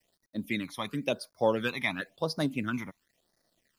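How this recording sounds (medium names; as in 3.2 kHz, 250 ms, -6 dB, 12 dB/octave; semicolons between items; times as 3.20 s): a quantiser's noise floor 12-bit, dither none; phasing stages 12, 0.96 Hz, lowest notch 460–2900 Hz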